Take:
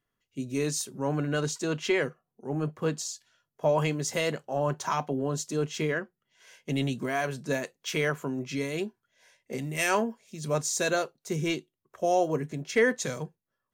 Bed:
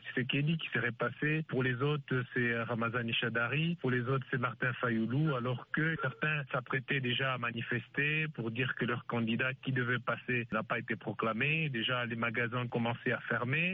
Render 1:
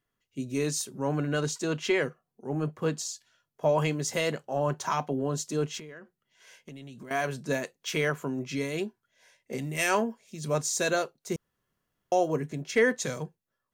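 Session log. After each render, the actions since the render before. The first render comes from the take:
0:05.78–0:07.11: downward compressor 10 to 1, threshold −41 dBFS
0:11.36–0:12.12: fill with room tone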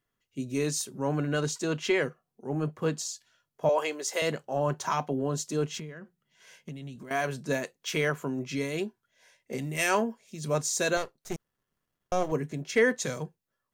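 0:03.69–0:04.22: high-pass filter 360 Hz 24 dB per octave
0:05.72–0:06.96: parametric band 170 Hz +10.5 dB 0.66 octaves
0:10.97–0:12.32: gain on one half-wave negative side −12 dB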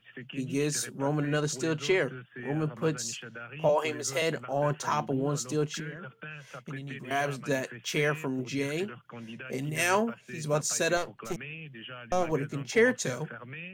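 mix in bed −10 dB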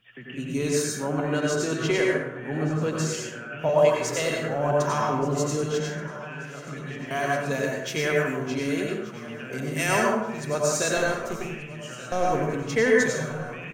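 repeating echo 1,180 ms, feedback 47%, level −18 dB
dense smooth reverb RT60 0.88 s, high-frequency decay 0.5×, pre-delay 80 ms, DRR −2 dB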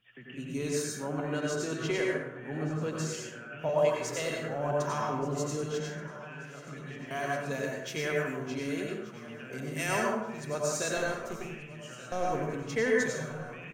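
level −7 dB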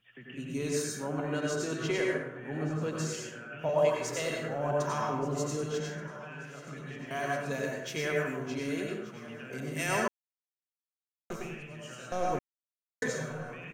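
0:10.08–0:11.30: silence
0:12.39–0:13.02: silence

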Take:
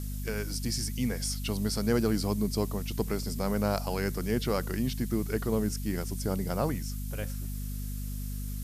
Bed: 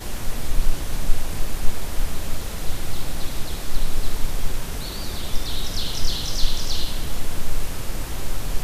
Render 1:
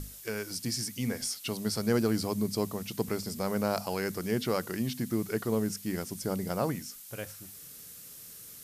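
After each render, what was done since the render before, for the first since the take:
mains-hum notches 50/100/150/200/250 Hz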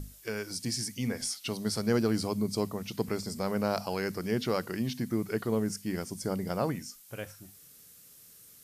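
noise reduction from a noise print 7 dB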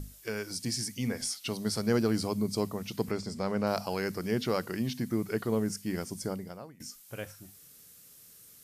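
0:03.11–0:03.67: high-frequency loss of the air 53 metres
0:06.22–0:06.80: fade out quadratic, to −22 dB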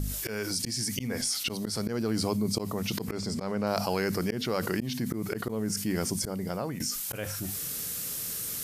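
volume swells 407 ms
envelope flattener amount 70%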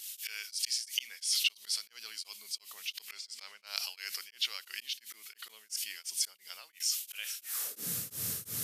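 high-pass filter sweep 2,900 Hz → 96 Hz, 0:07.40–0:07.99
tremolo along a rectified sine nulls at 2.9 Hz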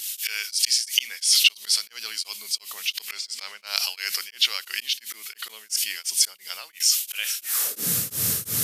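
level +12 dB
brickwall limiter −2 dBFS, peak gain reduction 2 dB

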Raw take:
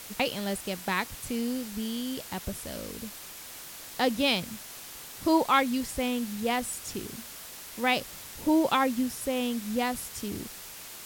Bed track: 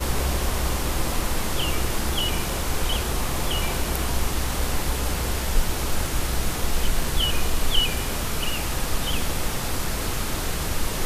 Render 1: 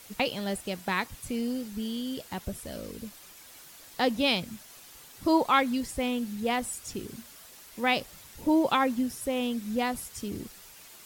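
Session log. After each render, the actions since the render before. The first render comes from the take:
broadband denoise 8 dB, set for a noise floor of −44 dBFS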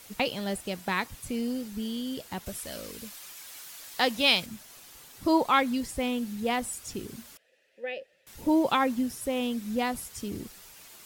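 0:02.46–0:04.46: tilt shelving filter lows −5.5 dB, about 670 Hz
0:07.37–0:08.27: formant filter e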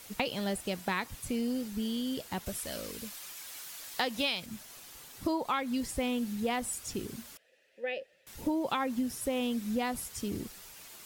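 downward compressor 12 to 1, threshold −27 dBFS, peak gain reduction 11.5 dB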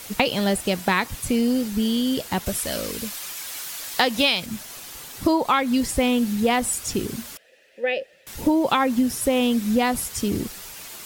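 level +11.5 dB

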